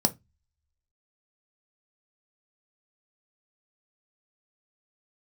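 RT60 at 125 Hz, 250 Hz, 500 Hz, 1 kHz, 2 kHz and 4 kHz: 0.40 s, 0.25 s, 0.20 s, 0.20 s, 0.20 s, 0.15 s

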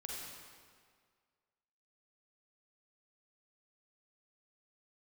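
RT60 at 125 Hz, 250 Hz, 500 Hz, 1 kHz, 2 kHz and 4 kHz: 1.8 s, 1.8 s, 1.9 s, 1.9 s, 1.7 s, 1.5 s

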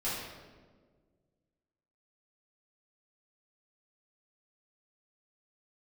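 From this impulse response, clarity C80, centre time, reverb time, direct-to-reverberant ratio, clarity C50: 2.5 dB, 84 ms, 1.6 s, -11.0 dB, -0.5 dB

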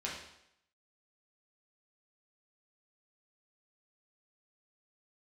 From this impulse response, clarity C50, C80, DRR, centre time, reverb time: 3.0 dB, 6.5 dB, -5.0 dB, 46 ms, 0.75 s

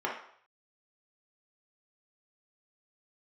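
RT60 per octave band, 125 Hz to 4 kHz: 0.65 s, 0.45 s, 0.60 s, 0.65 s, 0.60 s, 0.55 s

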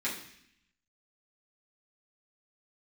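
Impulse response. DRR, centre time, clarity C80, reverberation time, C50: -9.0 dB, 30 ms, 10.0 dB, 0.70 s, 6.5 dB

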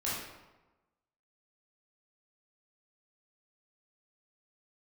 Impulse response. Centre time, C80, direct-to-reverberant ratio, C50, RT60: 73 ms, 3.0 dB, -8.0 dB, -0.5 dB, 1.1 s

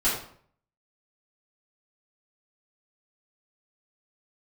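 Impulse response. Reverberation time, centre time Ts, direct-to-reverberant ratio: 0.55 s, 41 ms, -11.5 dB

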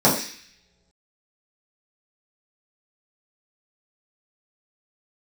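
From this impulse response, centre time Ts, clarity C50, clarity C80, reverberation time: 32 ms, 6.5 dB, 10.0 dB, no single decay rate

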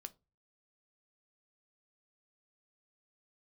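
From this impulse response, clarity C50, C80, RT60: 22.5 dB, 30.5 dB, 0.25 s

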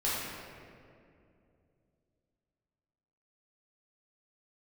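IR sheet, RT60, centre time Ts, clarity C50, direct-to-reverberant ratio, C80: 2.5 s, 135 ms, -3.0 dB, -9.0 dB, -0.5 dB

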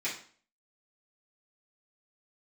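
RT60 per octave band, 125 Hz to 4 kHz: 0.45 s, 0.50 s, 0.45 s, 0.45 s, 0.45 s, 0.40 s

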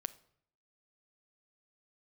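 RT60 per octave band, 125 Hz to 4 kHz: 0.80 s, 0.70 s, 0.65 s, 0.65 s, 0.55 s, 0.50 s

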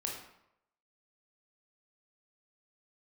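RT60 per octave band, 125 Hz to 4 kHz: 0.75 s, 0.70 s, 0.80 s, 0.80 s, 0.70 s, 0.55 s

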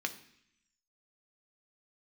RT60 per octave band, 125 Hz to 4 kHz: 0.90 s, 0.95 s, 0.65 s, 0.70 s, 0.95 s, 0.90 s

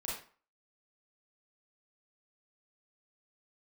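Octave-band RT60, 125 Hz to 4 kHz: 0.35 s, 0.40 s, 0.40 s, 0.45 s, 0.40 s, 0.30 s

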